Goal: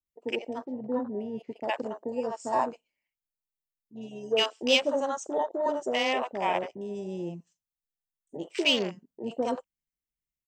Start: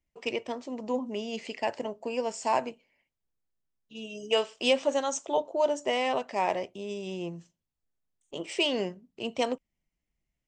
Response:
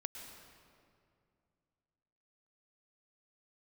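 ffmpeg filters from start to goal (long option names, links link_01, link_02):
-filter_complex "[0:a]acrossover=split=120|1300|4200[link_01][link_02][link_03][link_04];[link_01]alimiter=level_in=35dB:limit=-24dB:level=0:latency=1,volume=-35dB[link_05];[link_05][link_02][link_03][link_04]amix=inputs=4:normalize=0,acrossover=split=650[link_06][link_07];[link_07]adelay=60[link_08];[link_06][link_08]amix=inputs=2:normalize=0,asplit=3[link_09][link_10][link_11];[link_09]afade=type=out:start_time=0.64:duration=0.02[link_12];[link_10]adynamicsmooth=sensitivity=1.5:basefreq=1800,afade=type=in:start_time=0.64:duration=0.02,afade=type=out:start_time=1.62:duration=0.02[link_13];[link_11]afade=type=in:start_time=1.62:duration=0.02[link_14];[link_12][link_13][link_14]amix=inputs=3:normalize=0,afwtdn=0.0158,aemphasis=mode=production:type=50kf,volume=2dB"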